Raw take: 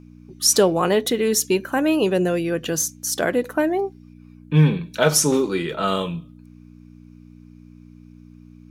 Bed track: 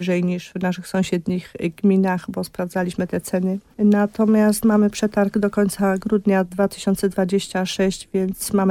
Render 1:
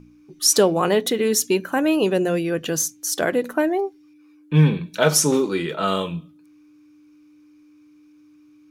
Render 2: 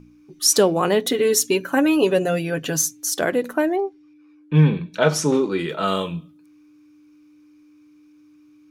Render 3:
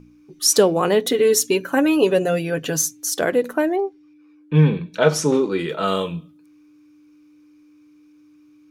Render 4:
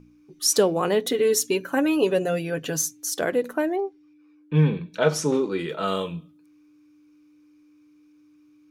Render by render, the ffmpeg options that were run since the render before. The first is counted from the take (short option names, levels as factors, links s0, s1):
-af "bandreject=f=60:t=h:w=4,bandreject=f=120:t=h:w=4,bandreject=f=180:t=h:w=4,bandreject=f=240:t=h:w=4"
-filter_complex "[0:a]asettb=1/sr,asplit=3[s0][s1][s2];[s0]atrim=end=1.094[s3];[s1]atrim=start=1.09:end=3.1,asetpts=PTS-STARTPTS,afade=t=in:d=0.004:c=qsin,afade=t=out:st=2.006:d=0.004:c=qsin,aecho=1:1:7.2:0.65,atrim=end_sample=88641[s4];[s2]atrim=start=3.096[s5];[s3][s4]acrossfade=d=0.004:c1=hsin:c2=qsin[s6];[s6][s5]acrossfade=d=0.004:c1=qsin:c2=hsin,asettb=1/sr,asplit=3[s7][s8][s9];[s7]atrim=end=3.764[s10];[s8]atrim=start=3.76:end=5.59,asetpts=PTS-STARTPTS,afade=t=in:d=0.004:c=qsin,afade=t=out:st=1.826:d=0.004:c=qsin,aemphasis=mode=reproduction:type=50fm[s11];[s9]atrim=start=5.586[s12];[s10][s11]acrossfade=d=0.004:c1=hsin:c2=qsin[s13];[s13][s12]acrossfade=d=0.004:c1=qsin:c2=hsin"
-af "equalizer=f=470:t=o:w=0.31:g=4"
-af "volume=0.596"